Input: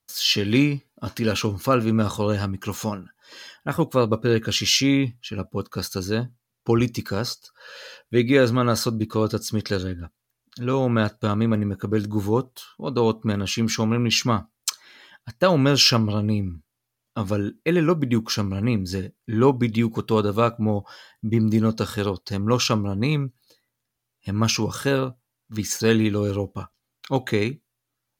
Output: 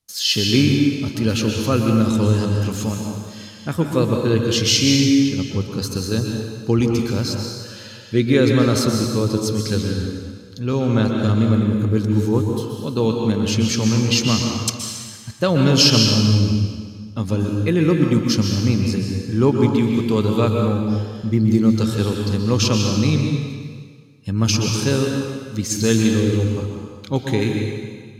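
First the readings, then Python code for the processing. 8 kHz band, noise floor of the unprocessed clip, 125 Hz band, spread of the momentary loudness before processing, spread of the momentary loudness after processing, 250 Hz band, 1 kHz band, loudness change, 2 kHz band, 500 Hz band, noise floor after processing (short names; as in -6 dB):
+5.0 dB, -81 dBFS, +6.5 dB, 14 LU, 12 LU, +5.5 dB, -1.5 dB, +4.0 dB, +0.5 dB, +2.0 dB, -38 dBFS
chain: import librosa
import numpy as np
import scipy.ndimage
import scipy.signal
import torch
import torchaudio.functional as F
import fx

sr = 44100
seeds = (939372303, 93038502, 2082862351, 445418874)

y = scipy.signal.sosfilt(scipy.signal.butter(2, 11000.0, 'lowpass', fs=sr, output='sos'), x)
y = fx.peak_eq(y, sr, hz=1100.0, db=-8.5, octaves=2.8)
y = fx.rev_plate(y, sr, seeds[0], rt60_s=1.7, hf_ratio=0.95, predelay_ms=110, drr_db=1.5)
y = y * librosa.db_to_amplitude(4.5)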